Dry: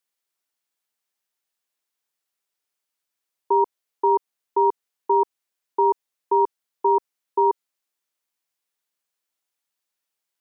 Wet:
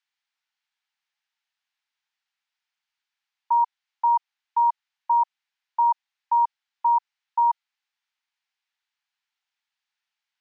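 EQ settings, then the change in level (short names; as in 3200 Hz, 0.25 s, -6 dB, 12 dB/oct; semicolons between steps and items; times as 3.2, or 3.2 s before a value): steep high-pass 810 Hz 48 dB/oct; air absorption 180 m; bell 1100 Hz -7.5 dB 0.64 oct; +7.0 dB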